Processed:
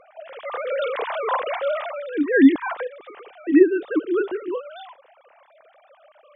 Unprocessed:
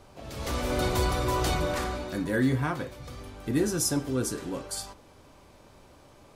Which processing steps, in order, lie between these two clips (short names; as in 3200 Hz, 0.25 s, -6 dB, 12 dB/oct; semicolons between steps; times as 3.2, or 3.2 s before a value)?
sine-wave speech; gain +7 dB